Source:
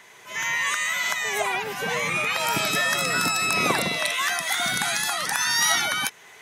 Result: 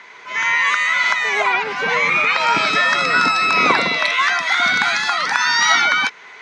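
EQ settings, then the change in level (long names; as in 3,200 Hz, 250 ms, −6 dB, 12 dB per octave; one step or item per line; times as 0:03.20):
loudspeaker in its box 170–5,600 Hz, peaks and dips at 260 Hz +4 dB, 470 Hz +3 dB, 1,000 Hz +7 dB, 1,400 Hz +8 dB, 2,200 Hz +8 dB, 4,300 Hz +4 dB
+3.0 dB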